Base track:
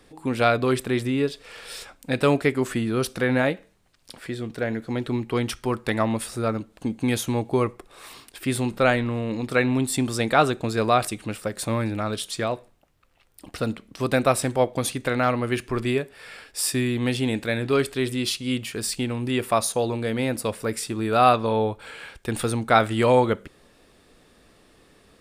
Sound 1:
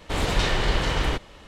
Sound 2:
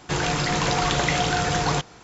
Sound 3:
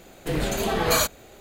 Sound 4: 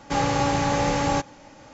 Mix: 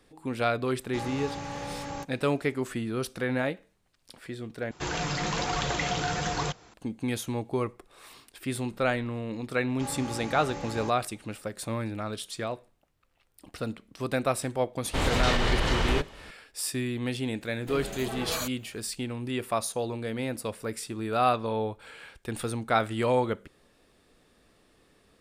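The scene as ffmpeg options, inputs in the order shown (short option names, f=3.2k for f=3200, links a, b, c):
-filter_complex "[4:a]asplit=2[a][b];[0:a]volume=-7dB[c];[2:a]flanger=delay=1.2:depth=6:regen=-46:speed=1.1:shape=triangular[d];[1:a]alimiter=level_in=13.5dB:limit=-1dB:release=50:level=0:latency=1[e];[3:a]aeval=exprs='0.282*(abs(mod(val(0)/0.282+3,4)-2)-1)':c=same[f];[c]asplit=2[g][h];[g]atrim=end=4.714[i];[d]atrim=end=2.03,asetpts=PTS-STARTPTS,volume=-3dB[j];[h]atrim=start=6.736[k];[a]atrim=end=1.73,asetpts=PTS-STARTPTS,volume=-14dB,afade=t=in:d=0.004:c=hsin,afade=t=out:st=1.726:d=0.004:c=hsin,adelay=830[l];[b]atrim=end=1.73,asetpts=PTS-STARTPTS,volume=-15.5dB,afade=t=in:d=0.004:c=hsin,afade=t=out:st=1.726:d=0.004:c=hsin,adelay=9690[m];[e]atrim=end=1.47,asetpts=PTS-STARTPTS,volume=-14.5dB,afade=t=in:d=0.004:c=hsin,afade=t=out:st=1.466:d=0.004:c=hsin,adelay=14840[n];[f]atrim=end=1.4,asetpts=PTS-STARTPTS,volume=-11.5dB,afade=t=in:d=0.004:c=hsin,afade=t=out:st=1.396:d=0.004:c=hsin,adelay=17410[o];[i][j]acrossfade=d=0.004:c1=hsin:c2=hsin[p];[p][k]acrossfade=d=0.004:c1=hsin:c2=hsin[q];[q][l][m][n][o]amix=inputs=5:normalize=0"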